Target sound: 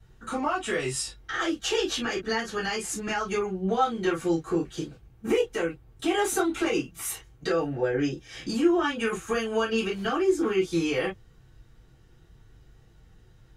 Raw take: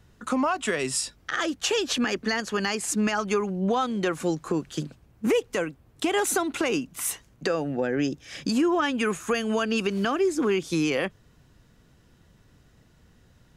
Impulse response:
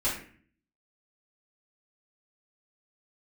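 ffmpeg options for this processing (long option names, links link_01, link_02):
-filter_complex "[1:a]atrim=start_sample=2205,atrim=end_sample=3969,asetrate=61740,aresample=44100[link_01];[0:a][link_01]afir=irnorm=-1:irlink=0,volume=-7dB"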